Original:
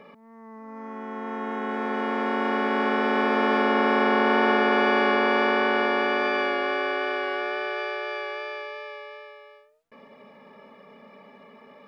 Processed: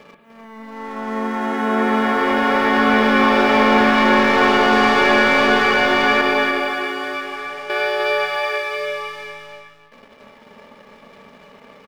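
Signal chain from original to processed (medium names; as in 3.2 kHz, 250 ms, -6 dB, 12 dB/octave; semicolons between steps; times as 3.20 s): 6.21–7.70 s: expander -19 dBFS; treble shelf 3.8 kHz +7.5 dB; waveshaping leveller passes 2; delay 300 ms -5 dB; on a send at -5 dB: reverberation RT60 1.1 s, pre-delay 44 ms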